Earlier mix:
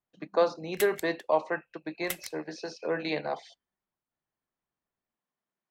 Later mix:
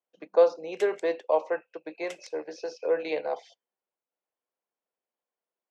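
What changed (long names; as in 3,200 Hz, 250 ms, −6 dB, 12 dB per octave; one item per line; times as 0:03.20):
background −4.5 dB
master: add loudspeaker in its box 380–7,000 Hz, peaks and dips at 490 Hz +8 dB, 1,200 Hz −4 dB, 1,800 Hz −6 dB, 4,100 Hz −8 dB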